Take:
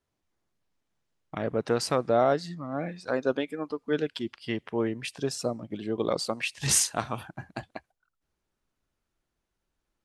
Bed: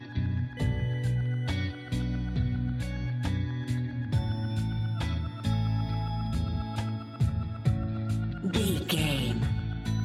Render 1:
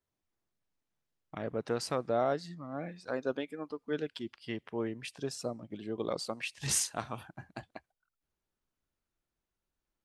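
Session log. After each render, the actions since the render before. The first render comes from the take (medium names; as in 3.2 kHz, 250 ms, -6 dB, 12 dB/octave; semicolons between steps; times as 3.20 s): trim -7 dB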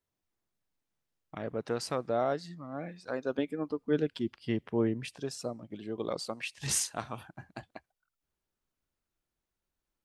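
3.38–5.18 s: bass shelf 490 Hz +10 dB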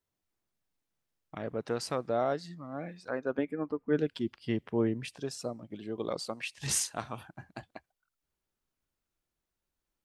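3.08–3.99 s: resonant high shelf 2.7 kHz -9 dB, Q 1.5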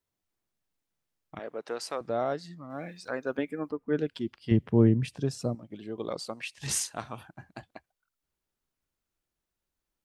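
1.39–2.01 s: high-pass 380 Hz; 2.70–3.71 s: treble shelf 2.6 kHz +10.5 dB; 4.51–5.55 s: peaking EQ 110 Hz +14 dB 2.8 oct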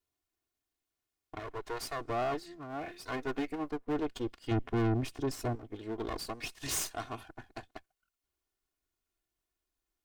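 comb filter that takes the minimum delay 2.8 ms; saturation -26.5 dBFS, distortion -6 dB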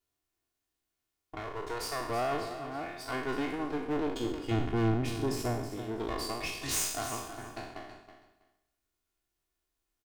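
spectral sustain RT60 0.77 s; feedback delay 324 ms, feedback 17%, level -11 dB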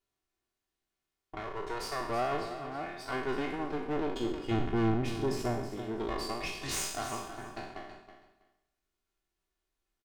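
treble shelf 7.4 kHz -9 dB; comb 5.2 ms, depth 31%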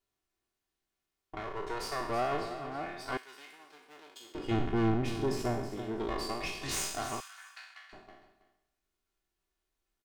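3.17–4.35 s: differentiator; 7.20–7.93 s: high-pass 1.4 kHz 24 dB/octave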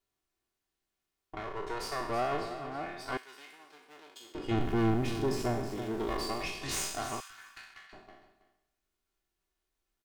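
4.57–6.43 s: jump at every zero crossing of -43.5 dBFS; 7.30–7.87 s: sliding maximum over 3 samples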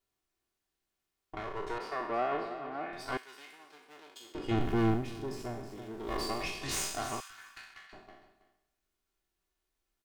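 1.78–2.93 s: three-band isolator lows -18 dB, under 180 Hz, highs -18 dB, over 3.4 kHz; 4.92–6.16 s: dip -8 dB, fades 0.13 s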